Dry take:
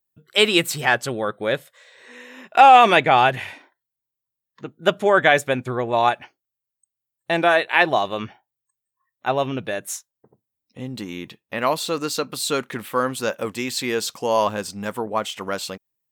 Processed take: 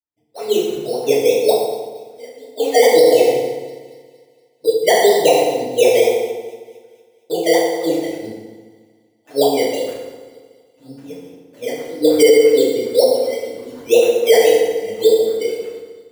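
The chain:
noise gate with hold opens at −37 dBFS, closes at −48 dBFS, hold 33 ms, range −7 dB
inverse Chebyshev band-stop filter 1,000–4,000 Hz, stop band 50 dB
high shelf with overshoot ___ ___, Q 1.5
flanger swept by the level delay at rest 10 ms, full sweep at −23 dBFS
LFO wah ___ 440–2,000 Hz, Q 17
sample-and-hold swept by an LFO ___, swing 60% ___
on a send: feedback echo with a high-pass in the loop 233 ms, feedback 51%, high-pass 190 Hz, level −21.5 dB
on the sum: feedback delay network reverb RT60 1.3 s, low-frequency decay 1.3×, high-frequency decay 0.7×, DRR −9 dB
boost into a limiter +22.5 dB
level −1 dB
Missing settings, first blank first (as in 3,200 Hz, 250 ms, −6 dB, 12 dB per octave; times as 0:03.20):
5,200 Hz, +8 dB, 5.3 Hz, 13×, 1.9 Hz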